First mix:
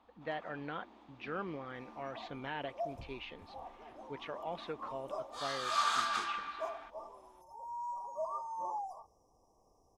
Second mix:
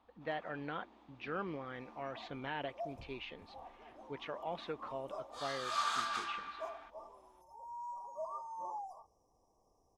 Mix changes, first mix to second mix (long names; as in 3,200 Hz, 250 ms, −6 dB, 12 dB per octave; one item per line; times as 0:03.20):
first sound −3.5 dB
second sound −4.0 dB